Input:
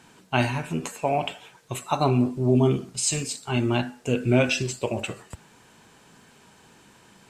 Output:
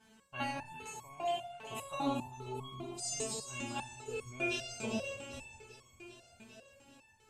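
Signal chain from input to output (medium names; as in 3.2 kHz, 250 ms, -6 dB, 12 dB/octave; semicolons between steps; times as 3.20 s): spectral sustain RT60 0.70 s; peaking EQ 77 Hz +10.5 dB 1.2 oct; on a send: echo whose repeats swap between lows and highs 198 ms, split 1.1 kHz, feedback 81%, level -8 dB; on the sum: resonator arpeggio 5 Hz 220–1100 Hz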